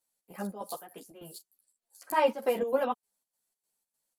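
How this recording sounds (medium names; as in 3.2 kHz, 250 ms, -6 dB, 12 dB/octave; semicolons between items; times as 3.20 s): chopped level 3.3 Hz, depth 65%, duty 65%; a shimmering, thickened sound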